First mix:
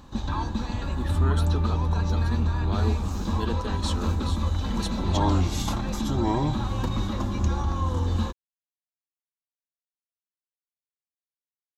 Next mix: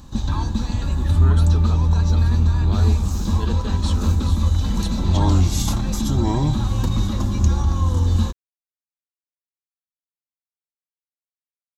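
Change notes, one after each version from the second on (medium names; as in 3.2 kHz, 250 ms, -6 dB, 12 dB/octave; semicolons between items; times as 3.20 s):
background: add tone controls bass +8 dB, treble +10 dB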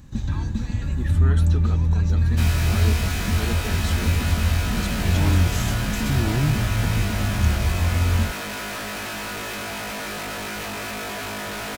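first sound -5.0 dB; second sound: unmuted; master: add ten-band graphic EQ 125 Hz +6 dB, 1 kHz -8 dB, 2 kHz +9 dB, 4 kHz -6 dB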